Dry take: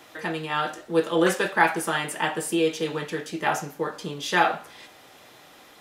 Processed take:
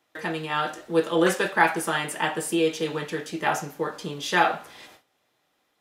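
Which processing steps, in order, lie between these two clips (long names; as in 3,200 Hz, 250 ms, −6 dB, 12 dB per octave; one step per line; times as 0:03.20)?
noise gate with hold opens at −37 dBFS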